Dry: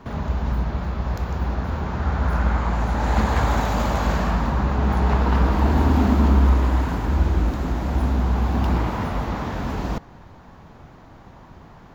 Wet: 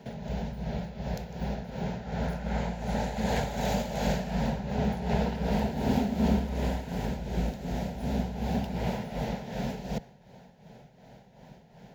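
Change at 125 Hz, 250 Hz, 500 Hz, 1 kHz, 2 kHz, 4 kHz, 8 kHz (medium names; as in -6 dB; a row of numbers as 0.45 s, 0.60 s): -11.5 dB, -6.0 dB, -4.5 dB, -10.0 dB, -9.5 dB, -4.0 dB, no reading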